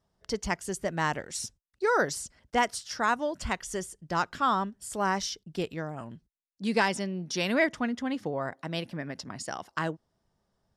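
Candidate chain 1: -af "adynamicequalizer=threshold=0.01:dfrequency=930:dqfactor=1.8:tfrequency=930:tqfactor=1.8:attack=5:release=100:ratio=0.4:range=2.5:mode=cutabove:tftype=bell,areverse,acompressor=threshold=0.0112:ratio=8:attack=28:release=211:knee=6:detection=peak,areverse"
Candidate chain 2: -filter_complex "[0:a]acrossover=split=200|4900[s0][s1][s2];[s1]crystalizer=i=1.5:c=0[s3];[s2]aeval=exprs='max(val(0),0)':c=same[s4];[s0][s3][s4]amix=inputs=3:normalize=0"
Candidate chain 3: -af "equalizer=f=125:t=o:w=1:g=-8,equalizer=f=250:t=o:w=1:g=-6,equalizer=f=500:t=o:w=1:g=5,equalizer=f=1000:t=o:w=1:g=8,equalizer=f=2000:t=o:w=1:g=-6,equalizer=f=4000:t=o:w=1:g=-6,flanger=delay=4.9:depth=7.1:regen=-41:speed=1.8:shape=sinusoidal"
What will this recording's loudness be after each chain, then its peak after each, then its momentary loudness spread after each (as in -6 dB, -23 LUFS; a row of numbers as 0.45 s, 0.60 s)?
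-41.0 LUFS, -30.5 LUFS, -31.5 LUFS; -22.0 dBFS, -9.0 dBFS, -11.5 dBFS; 4 LU, 12 LU, 15 LU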